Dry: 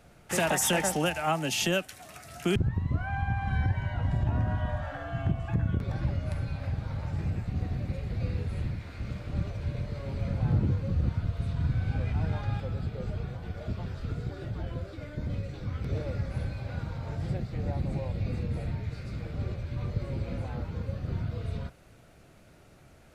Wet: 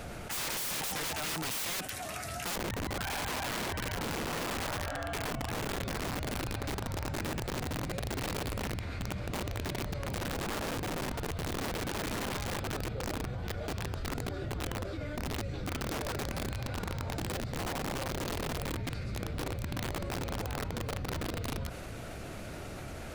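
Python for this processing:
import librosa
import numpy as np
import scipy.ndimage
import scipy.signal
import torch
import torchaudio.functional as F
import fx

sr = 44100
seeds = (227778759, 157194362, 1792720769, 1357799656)

y = fx.peak_eq(x, sr, hz=150.0, db=-5.0, octaves=0.34)
y = (np.mod(10.0 ** (28.0 / 20.0) * y + 1.0, 2.0) - 1.0) / 10.0 ** (28.0 / 20.0)
y = fx.env_flatten(y, sr, amount_pct=70)
y = y * librosa.db_to_amplitude(-3.5)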